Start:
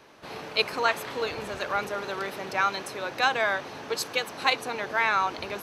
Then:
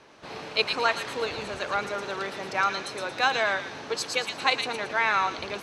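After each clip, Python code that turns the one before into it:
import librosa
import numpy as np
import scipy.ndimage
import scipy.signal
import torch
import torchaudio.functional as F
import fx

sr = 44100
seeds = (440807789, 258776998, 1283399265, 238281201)

y = scipy.signal.sosfilt(scipy.signal.butter(4, 9300.0, 'lowpass', fs=sr, output='sos'), x)
y = fx.echo_wet_highpass(y, sr, ms=114, feedback_pct=34, hz=2600.0, wet_db=-3)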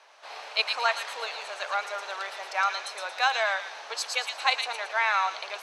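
y = scipy.signal.sosfilt(scipy.signal.cheby1(3, 1.0, 660.0, 'highpass', fs=sr, output='sos'), x)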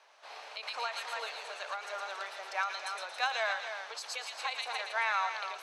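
y = x + 10.0 ** (-9.0 / 20.0) * np.pad(x, (int(277 * sr / 1000.0), 0))[:len(x)]
y = fx.end_taper(y, sr, db_per_s=110.0)
y = y * librosa.db_to_amplitude(-6.0)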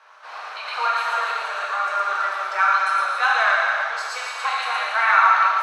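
y = fx.peak_eq(x, sr, hz=1300.0, db=14.5, octaves=1.1)
y = fx.rev_plate(y, sr, seeds[0], rt60_s=1.8, hf_ratio=0.9, predelay_ms=0, drr_db=-4.5)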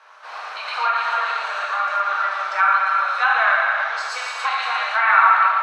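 y = fx.env_lowpass_down(x, sr, base_hz=2900.0, full_db=-16.5)
y = fx.dynamic_eq(y, sr, hz=390.0, q=1.7, threshold_db=-44.0, ratio=4.0, max_db=-8)
y = y * librosa.db_to_amplitude(2.0)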